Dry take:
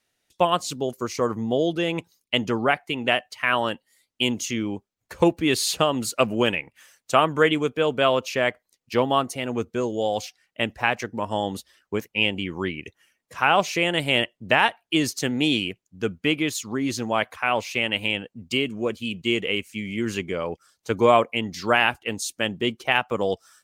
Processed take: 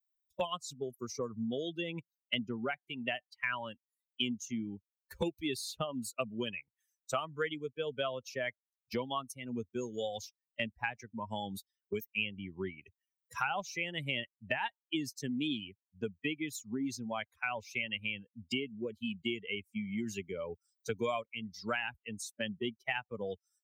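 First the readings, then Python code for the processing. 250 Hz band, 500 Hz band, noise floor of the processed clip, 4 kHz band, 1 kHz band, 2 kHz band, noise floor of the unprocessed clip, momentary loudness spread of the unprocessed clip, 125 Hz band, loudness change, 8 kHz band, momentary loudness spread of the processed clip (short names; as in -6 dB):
-12.5 dB, -15.0 dB, under -85 dBFS, -13.5 dB, -16.5 dB, -13.0 dB, -80 dBFS, 10 LU, -13.5 dB, -14.0 dB, -13.5 dB, 8 LU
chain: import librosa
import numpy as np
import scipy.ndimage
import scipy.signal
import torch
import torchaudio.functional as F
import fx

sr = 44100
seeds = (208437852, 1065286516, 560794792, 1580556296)

y = fx.bin_expand(x, sr, power=2.0)
y = fx.band_squash(y, sr, depth_pct=100)
y = y * 10.0 ** (-8.0 / 20.0)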